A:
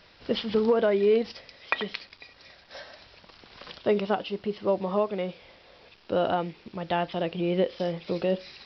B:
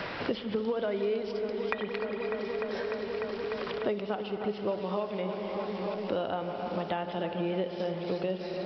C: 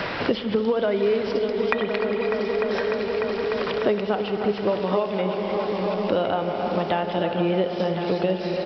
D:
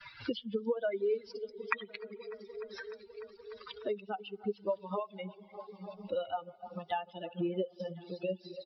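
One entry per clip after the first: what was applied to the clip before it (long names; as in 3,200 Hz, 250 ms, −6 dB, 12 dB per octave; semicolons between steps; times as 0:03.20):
delay with a low-pass on its return 299 ms, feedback 84%, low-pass 2,200 Hz, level −13 dB; spring reverb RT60 3.6 s, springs 54 ms, chirp 25 ms, DRR 9 dB; multiband upward and downward compressor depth 100%; level −6.5 dB
single-tap delay 1,060 ms −9.5 dB; level +8.5 dB
spectral dynamics exaggerated over time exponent 3; downward expander −42 dBFS; low-shelf EQ 140 Hz −9.5 dB; level −4.5 dB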